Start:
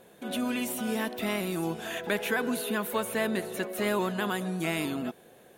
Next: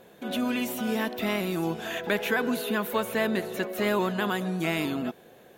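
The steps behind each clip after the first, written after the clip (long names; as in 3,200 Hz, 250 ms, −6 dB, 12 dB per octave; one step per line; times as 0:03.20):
parametric band 9,500 Hz −9 dB 0.52 octaves
level +2.5 dB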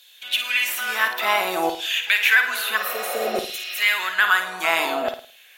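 healed spectral selection 0:02.79–0:03.72, 520–5,900 Hz after
auto-filter high-pass saw down 0.59 Hz 630–3,700 Hz
flutter between parallel walls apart 9.3 metres, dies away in 0.39 s
level +8.5 dB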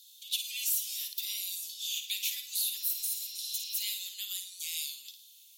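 inverse Chebyshev high-pass filter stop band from 1,700 Hz, stop band 50 dB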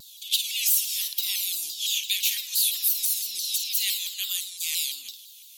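low-shelf EQ 450 Hz +11.5 dB
pitch modulation by a square or saw wave saw down 5.9 Hz, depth 160 cents
level +8.5 dB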